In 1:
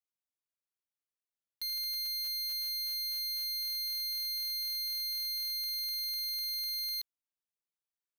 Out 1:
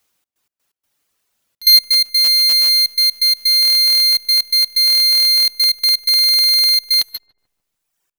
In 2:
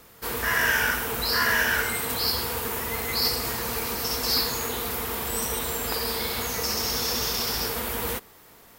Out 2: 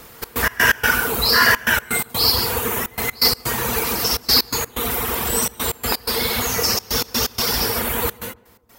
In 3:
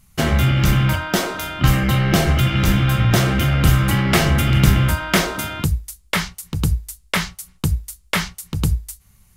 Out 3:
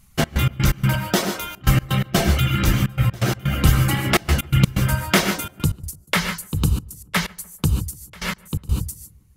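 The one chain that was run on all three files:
reverb reduction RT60 1.5 s
reverb whose tail is shaped and stops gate 170 ms rising, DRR 5.5 dB
gate pattern "xx.x.x.xxxx" 126 BPM −24 dB
feedback echo with a low-pass in the loop 146 ms, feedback 55%, low-pass 1,200 Hz, level −22 dB
normalise the peak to −2 dBFS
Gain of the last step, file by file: +27.5, +9.5, +0.5 decibels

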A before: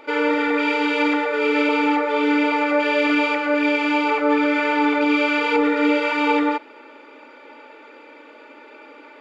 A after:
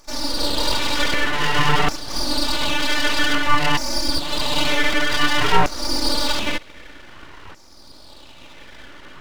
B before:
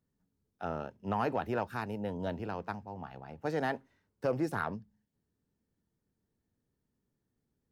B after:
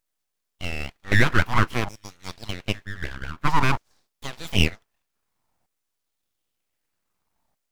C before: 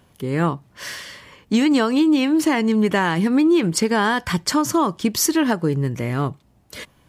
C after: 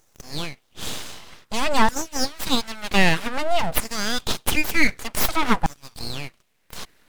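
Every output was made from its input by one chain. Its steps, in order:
auto-filter high-pass saw down 0.53 Hz 390–3,400 Hz
full-wave rectification
normalise the peak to −2 dBFS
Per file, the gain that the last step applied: +2.5, +12.5, +2.0 decibels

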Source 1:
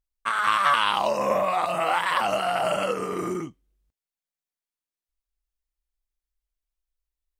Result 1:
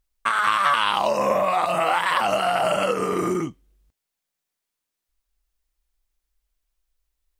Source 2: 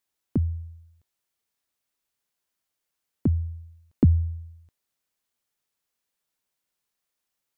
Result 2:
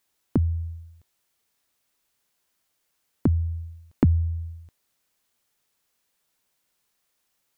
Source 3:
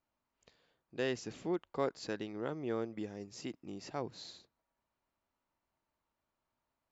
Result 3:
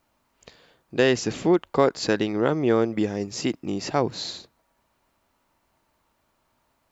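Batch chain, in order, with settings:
downward compressor 2 to 1, threshold −32 dBFS
normalise the peak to −6 dBFS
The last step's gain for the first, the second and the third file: +9.0, +8.0, +17.0 decibels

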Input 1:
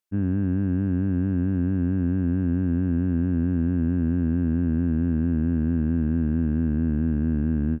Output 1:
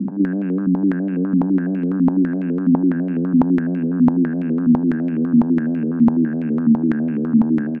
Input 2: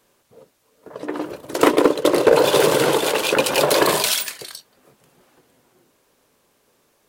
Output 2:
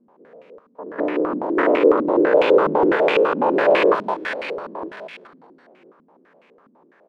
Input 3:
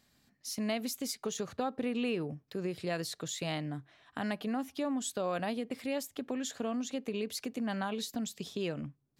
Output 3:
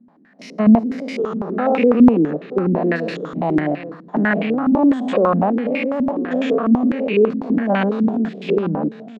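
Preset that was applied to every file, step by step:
spectrum averaged block by block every 200 ms
Butterworth high-pass 160 Hz 72 dB per octave
downward compressor 2.5 to 1, threshold −27 dBFS
pitch vibrato 6.1 Hz 6.2 cents
single-tap delay 932 ms −14 dB
low-pass on a step sequencer 12 Hz 240–2,400 Hz
loudness normalisation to −18 LKFS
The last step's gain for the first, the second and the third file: +6.5, +6.5, +17.0 decibels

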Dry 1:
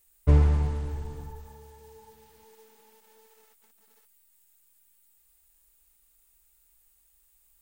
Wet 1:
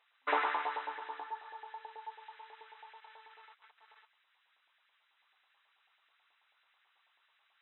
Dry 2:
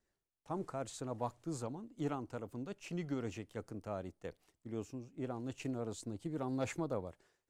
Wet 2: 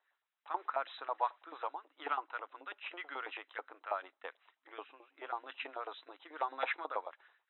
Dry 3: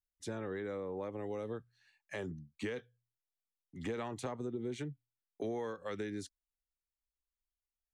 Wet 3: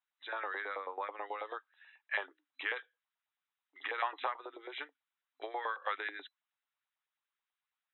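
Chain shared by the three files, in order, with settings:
auto-filter high-pass saw up 9.2 Hz 790–1,800 Hz
brick-wall band-pass 260–4,000 Hz
level +6 dB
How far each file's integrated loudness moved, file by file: −12.0, +1.0, +1.5 LU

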